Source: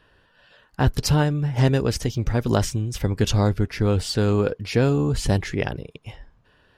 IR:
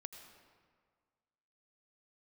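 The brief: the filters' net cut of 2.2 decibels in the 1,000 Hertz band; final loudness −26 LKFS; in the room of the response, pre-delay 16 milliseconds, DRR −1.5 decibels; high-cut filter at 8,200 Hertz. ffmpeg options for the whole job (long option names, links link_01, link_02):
-filter_complex "[0:a]lowpass=8200,equalizer=frequency=1000:width_type=o:gain=-3,asplit=2[link_01][link_02];[1:a]atrim=start_sample=2205,adelay=16[link_03];[link_02][link_03]afir=irnorm=-1:irlink=0,volume=6dB[link_04];[link_01][link_04]amix=inputs=2:normalize=0,volume=-6.5dB"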